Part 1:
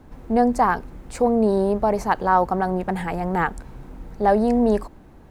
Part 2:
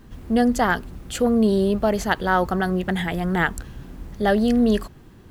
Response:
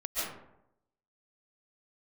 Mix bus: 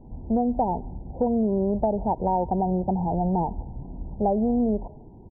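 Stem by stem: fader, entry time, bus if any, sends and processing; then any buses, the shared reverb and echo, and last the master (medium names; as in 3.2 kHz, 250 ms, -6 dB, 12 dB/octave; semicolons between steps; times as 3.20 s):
-12.5 dB, 0.00 s, send -22.5 dB, peaking EQ 770 Hz +9.5 dB 0.68 oct; compression, threshold -16 dBFS, peak gain reduction 11 dB
+0.5 dB, 0.9 ms, no send, none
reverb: on, RT60 0.80 s, pre-delay 100 ms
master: brick-wall FIR low-pass 1 kHz; compression, threshold -19 dBFS, peak gain reduction 7 dB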